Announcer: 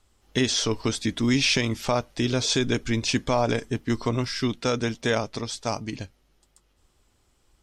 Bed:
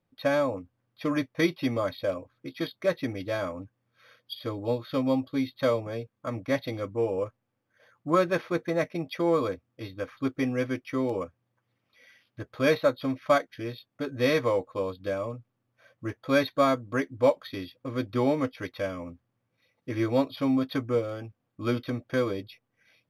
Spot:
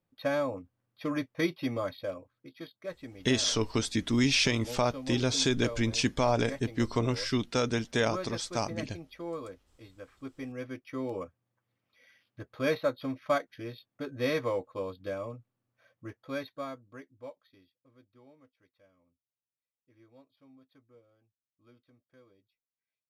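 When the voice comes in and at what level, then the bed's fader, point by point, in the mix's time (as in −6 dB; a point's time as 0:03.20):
2.90 s, −3.5 dB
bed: 0:01.84 −4.5 dB
0:02.72 −13.5 dB
0:10.31 −13.5 dB
0:11.20 −5.5 dB
0:15.72 −5.5 dB
0:18.21 −33.5 dB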